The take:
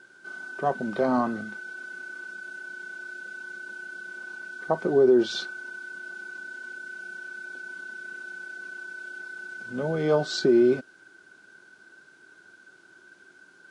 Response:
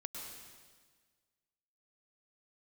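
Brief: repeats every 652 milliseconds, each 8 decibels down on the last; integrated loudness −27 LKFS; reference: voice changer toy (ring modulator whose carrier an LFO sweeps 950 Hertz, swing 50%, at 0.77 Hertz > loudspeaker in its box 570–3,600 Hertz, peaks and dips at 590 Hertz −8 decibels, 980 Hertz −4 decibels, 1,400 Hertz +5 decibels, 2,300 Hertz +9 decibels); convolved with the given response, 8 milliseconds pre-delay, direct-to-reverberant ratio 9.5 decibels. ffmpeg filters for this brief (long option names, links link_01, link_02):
-filter_complex "[0:a]aecho=1:1:652|1304|1956|2608|3260:0.398|0.159|0.0637|0.0255|0.0102,asplit=2[link_01][link_02];[1:a]atrim=start_sample=2205,adelay=8[link_03];[link_02][link_03]afir=irnorm=-1:irlink=0,volume=-8dB[link_04];[link_01][link_04]amix=inputs=2:normalize=0,aeval=exprs='val(0)*sin(2*PI*950*n/s+950*0.5/0.77*sin(2*PI*0.77*n/s))':channel_layout=same,highpass=570,equalizer=frequency=590:width_type=q:width=4:gain=-8,equalizer=frequency=980:width_type=q:width=4:gain=-4,equalizer=frequency=1400:width_type=q:width=4:gain=5,equalizer=frequency=2300:width_type=q:width=4:gain=9,lowpass=frequency=3600:width=0.5412,lowpass=frequency=3600:width=1.3066,volume=0.5dB"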